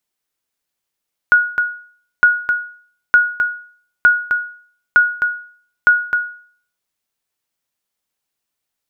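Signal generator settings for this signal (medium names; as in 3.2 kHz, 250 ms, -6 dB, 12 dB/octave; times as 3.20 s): sonar ping 1.45 kHz, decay 0.50 s, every 0.91 s, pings 6, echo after 0.26 s, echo -7 dB -3 dBFS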